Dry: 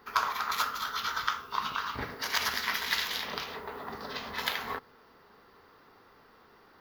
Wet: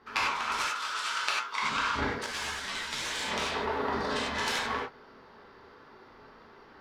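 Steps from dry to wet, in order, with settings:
phase distortion by the signal itself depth 0.56 ms
0:00.60–0:01.62: high-pass filter 980 Hz 6 dB per octave
speech leveller within 5 dB 0.5 s
high-frequency loss of the air 74 metres
reverb whose tail is shaped and stops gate 120 ms flat, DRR −4 dB
0:02.26–0:03.05: string-ensemble chorus

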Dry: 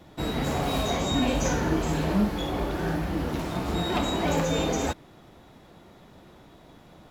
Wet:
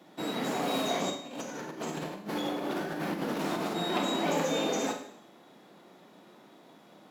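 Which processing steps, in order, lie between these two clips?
high-pass filter 190 Hz 24 dB per octave
0:01.10–0:03.76: compressor whose output falls as the input rises −32 dBFS, ratio −0.5
four-comb reverb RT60 0.66 s, combs from 30 ms, DRR 5.5 dB
level −3.5 dB

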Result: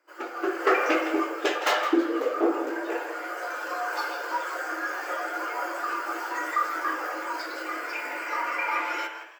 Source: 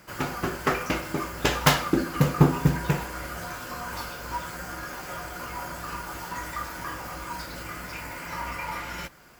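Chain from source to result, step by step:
parametric band 11,000 Hz −5.5 dB 0.31 octaves
spring reverb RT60 1.2 s, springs 51/59 ms, chirp 75 ms, DRR 6.5 dB
dynamic equaliser 970 Hz, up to −7 dB, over −48 dBFS, Q 7.3
automatic gain control gain up to 8.5 dB
soft clipping −15 dBFS, distortion −10 dB
linear-phase brick-wall high-pass 280 Hz
on a send: echo with shifted repeats 164 ms, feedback 45%, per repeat +130 Hz, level −9 dB
on the sum: every bin expanded away from the loudest bin 1.5 to 1

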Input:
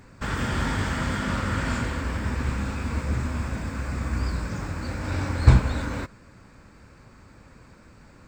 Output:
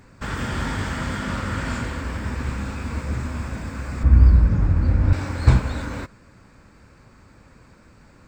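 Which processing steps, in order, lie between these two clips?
0:04.03–0:05.13: RIAA equalisation playback

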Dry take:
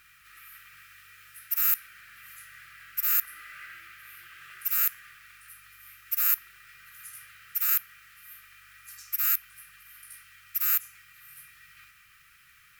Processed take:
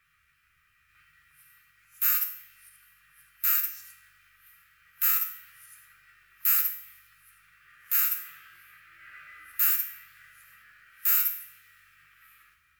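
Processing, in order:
played backwards from end to start
tuned comb filter 77 Hz, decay 0.66 s, harmonics all, mix 80%
multiband upward and downward expander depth 40%
level +7 dB

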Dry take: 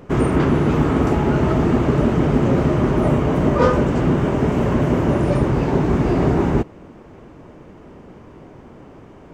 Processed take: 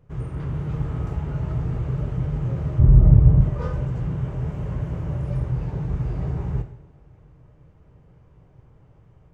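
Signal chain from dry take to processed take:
drawn EQ curve 140 Hz 0 dB, 230 Hz −20 dB, 410 Hz −14 dB
automatic gain control gain up to 4 dB
0:02.79–0:03.41: spectral tilt −4 dB per octave
coupled-rooms reverb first 0.7 s, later 2.9 s, DRR 6.5 dB
level −8.5 dB

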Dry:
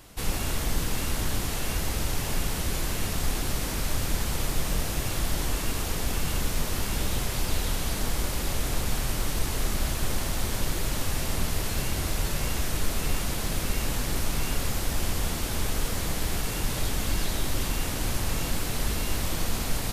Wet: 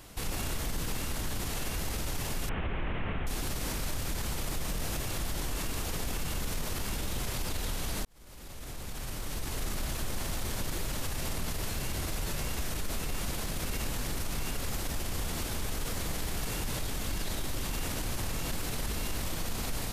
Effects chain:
0:02.49–0:03.27: linear delta modulator 16 kbit/s, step −34 dBFS
brickwall limiter −24.5 dBFS, peak gain reduction 11 dB
0:08.05–0:09.74: fade in

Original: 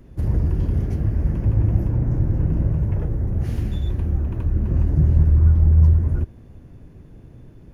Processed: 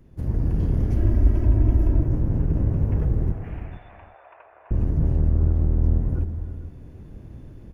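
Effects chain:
sub-octave generator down 1 octave, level −1 dB
automatic gain control gain up to 7 dB
brickwall limiter −6.5 dBFS, peak gain reduction 5 dB
0:00.96–0:02.03: comb filter 3.1 ms, depth 97%
0:03.32–0:04.71: elliptic band-pass filter 660–2,500 Hz, stop band 50 dB
on a send: single-tap delay 452 ms −14 dB
on the sum: reverb whose tail is shaped and stops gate 380 ms rising, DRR 9 dB
level −7 dB

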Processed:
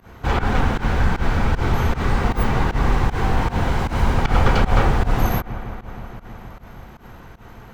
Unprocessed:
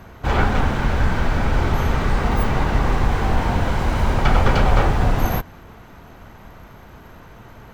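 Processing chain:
notch filter 610 Hz, Q 12
delay with a low-pass on its return 158 ms, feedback 81%, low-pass 2,500 Hz, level −15 dB
fake sidechain pumping 155 BPM, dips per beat 1, −21 dB, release 111 ms

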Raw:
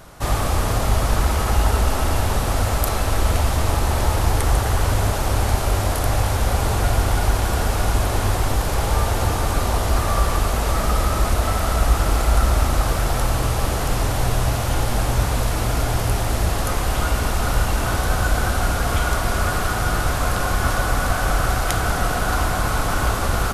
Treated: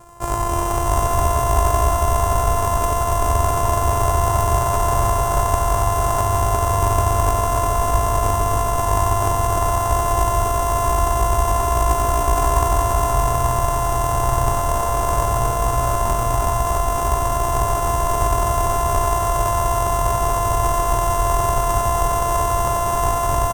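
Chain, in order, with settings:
samples sorted by size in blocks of 128 samples
graphic EQ with 10 bands 125 Hz +5 dB, 250 Hz −10 dB, 500 Hz +4 dB, 1,000 Hz +12 dB, 2,000 Hz −6 dB, 4,000 Hz −11 dB, 8,000 Hz +10 dB
on a send: multi-tap delay 91/151/279/463/652/829 ms −6.5/−17/−4.5/−12.5/−3.5/−10.5 dB
on the sum: level −4.5 dB

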